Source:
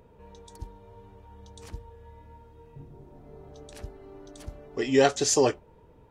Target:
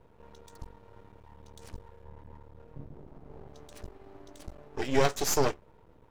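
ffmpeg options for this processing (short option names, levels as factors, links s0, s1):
-filter_complex "[0:a]asettb=1/sr,asplit=3[s0][s1][s2];[s0]atrim=end=2.044[s3];[s1]atrim=start=2.04:end=3.48,asetpts=PTS-STARTPTS,afade=t=in:d=0.004:c=qsin,afade=t=out:st=1.436:d=0.004:c=qsin,tiltshelf=f=810:g=5[s4];[s2]atrim=start=3.476[s5];[s3][s4]acrossfade=d=0.004:c1=hsin:c2=qsin[s6];[s6][s5]acrossfade=d=0.004:c1=qsin:c2=hsin,aeval=exprs='max(val(0),0)':c=same"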